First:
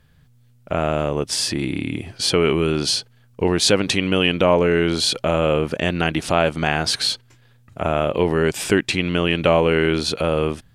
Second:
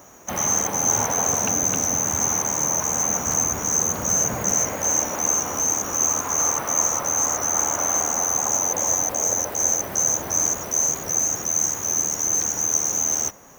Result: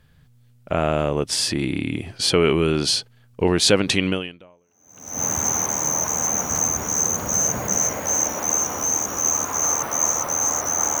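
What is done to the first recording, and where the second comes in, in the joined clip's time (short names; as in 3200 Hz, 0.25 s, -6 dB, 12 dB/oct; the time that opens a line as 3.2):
first
4.66 switch to second from 1.42 s, crossfade 1.14 s exponential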